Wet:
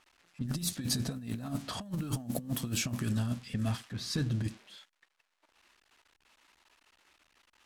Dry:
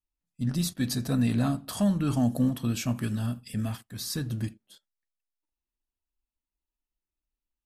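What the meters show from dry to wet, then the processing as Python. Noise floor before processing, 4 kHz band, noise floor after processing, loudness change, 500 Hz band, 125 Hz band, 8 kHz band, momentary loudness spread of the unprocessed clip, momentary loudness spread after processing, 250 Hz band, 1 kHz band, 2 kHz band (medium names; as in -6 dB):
under -85 dBFS, -0.5 dB, -79 dBFS, -6.0 dB, -7.0 dB, -5.0 dB, -0.5 dB, 8 LU, 7 LU, -8.5 dB, -6.0 dB, -2.5 dB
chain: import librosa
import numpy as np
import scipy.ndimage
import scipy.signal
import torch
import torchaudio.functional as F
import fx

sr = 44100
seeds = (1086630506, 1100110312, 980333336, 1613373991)

y = x + 0.5 * 10.0 ** (-32.5 / 20.0) * np.diff(np.sign(x), prepend=np.sign(x[:1]))
y = fx.env_lowpass(y, sr, base_hz=1200.0, full_db=-23.0)
y = fx.over_compress(y, sr, threshold_db=-30.0, ratio=-0.5)
y = y * 10.0 ** (-2.5 / 20.0)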